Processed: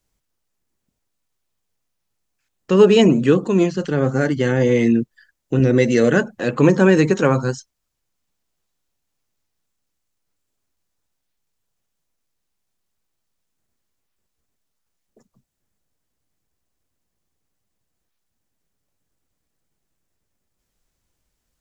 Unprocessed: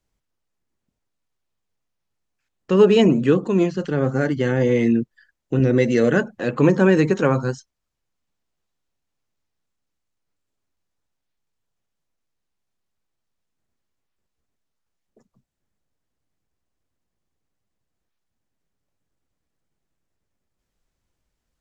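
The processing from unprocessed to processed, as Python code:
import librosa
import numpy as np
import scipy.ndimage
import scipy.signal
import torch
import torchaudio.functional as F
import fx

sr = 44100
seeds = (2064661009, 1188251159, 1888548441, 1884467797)

y = fx.high_shelf(x, sr, hz=5500.0, db=8.0)
y = F.gain(torch.from_numpy(y), 2.0).numpy()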